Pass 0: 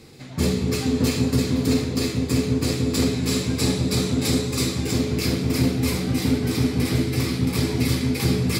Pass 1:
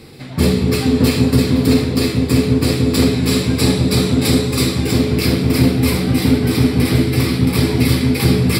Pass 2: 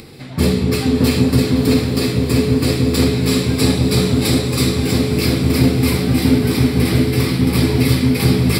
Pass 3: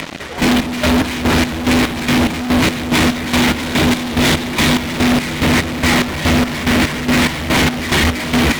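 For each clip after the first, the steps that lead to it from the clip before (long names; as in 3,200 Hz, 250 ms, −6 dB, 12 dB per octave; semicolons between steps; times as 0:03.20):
parametric band 6,500 Hz −14 dB 0.27 octaves; level +7.5 dB
upward compression, threshold −34 dBFS; feedback delay with all-pass diffusion 696 ms, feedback 46%, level −10 dB; level −1 dB
single-sideband voice off tune −180 Hz 380–3,500 Hz; fuzz pedal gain 39 dB, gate −43 dBFS; square-wave tremolo 2.4 Hz, depth 65%, duty 45%; level +2 dB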